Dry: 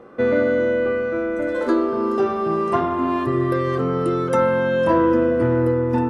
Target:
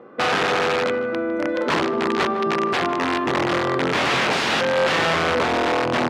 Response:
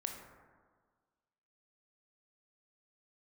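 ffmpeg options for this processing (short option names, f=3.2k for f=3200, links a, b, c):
-filter_complex "[0:a]asettb=1/sr,asplit=3[a][b][c];[a]atrim=end=3.934[d];[b]atrim=start=3.93:end=4.61,asetpts=PTS-STARTPTS,afade=t=in:d=0.004:c=qsin,afade=t=out:st=0.676:d=0.004:c=qsin,acontrast=78[e];[c]atrim=start=4.606[f];[d][e]acrossfade=d=0.004:c1=hsin:c2=qsin[g];[g][f]acrossfade=d=0.004:c1=qsin:c2=hsin,aeval=exprs='(mod(5.01*val(0)+1,2)-1)/5.01':c=same,highpass=140,lowpass=3.7k,asplit=2[h][i];[i]adelay=154,lowpass=f=1.8k:p=1,volume=-12dB,asplit=2[j][k];[k]adelay=154,lowpass=f=1.8k:p=1,volume=0.54,asplit=2[l][m];[m]adelay=154,lowpass=f=1.8k:p=1,volume=0.54,asplit=2[n][o];[o]adelay=154,lowpass=f=1.8k:p=1,volume=0.54,asplit=2[p][q];[q]adelay=154,lowpass=f=1.8k:p=1,volume=0.54,asplit=2[r][s];[s]adelay=154,lowpass=f=1.8k:p=1,volume=0.54[t];[h][j][l][n][p][r][t]amix=inputs=7:normalize=0"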